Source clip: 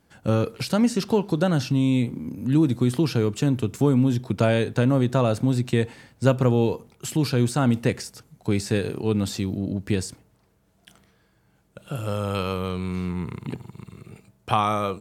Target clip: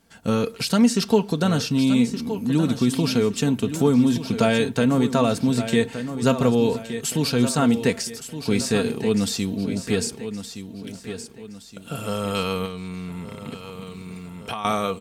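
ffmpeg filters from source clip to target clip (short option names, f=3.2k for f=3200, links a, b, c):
-filter_complex "[0:a]highshelf=f=8.7k:g=-6.5,aecho=1:1:1169|2338|3507|4676:0.299|0.116|0.0454|0.0177,asettb=1/sr,asplit=3[a][b][c];[a]atrim=end=12.654[d];[b]atrim=start=12.65:end=14.65,asetpts=PTS-STARTPTS,afade=t=in:d=0.004:c=qsin,afade=t=out:st=1.996:d=0.004:c=qsin,acompressor=threshold=-31dB:ratio=4[e];[c]atrim=start=14.646[f];[d][e]acrossfade=d=0.004:c1=hsin:c2=qsin[g];[g][f]acrossfade=d=0.004:c1=qsin:c2=hsin,highshelf=f=3.2k:g=9.5,aecho=1:1:4.4:0.5"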